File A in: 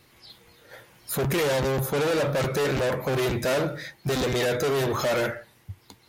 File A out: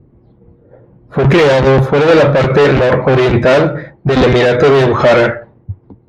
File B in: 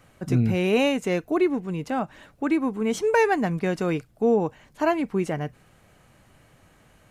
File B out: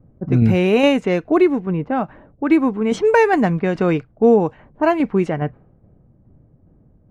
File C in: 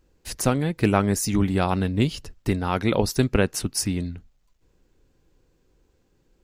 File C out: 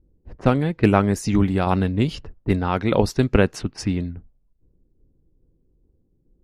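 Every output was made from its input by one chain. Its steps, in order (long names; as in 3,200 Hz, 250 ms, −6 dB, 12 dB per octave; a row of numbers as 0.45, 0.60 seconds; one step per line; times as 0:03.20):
low-pass that shuts in the quiet parts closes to 300 Hz, open at −18.5 dBFS
high-shelf EQ 4,300 Hz −9 dB
shaped tremolo saw down 2.4 Hz, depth 40%
normalise the peak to −2 dBFS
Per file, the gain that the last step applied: +18.0, +9.0, +4.5 decibels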